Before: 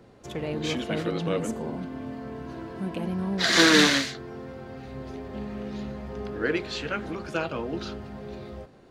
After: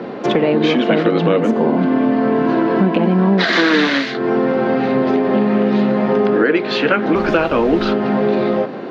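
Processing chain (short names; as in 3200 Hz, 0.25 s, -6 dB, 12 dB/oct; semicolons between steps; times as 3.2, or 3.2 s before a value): HPF 190 Hz 24 dB/oct; compressor 6:1, threshold -39 dBFS, peak gain reduction 22.5 dB; 7.14–7.92 added noise pink -57 dBFS; air absorption 280 m; maximiser +30 dB; gain -2 dB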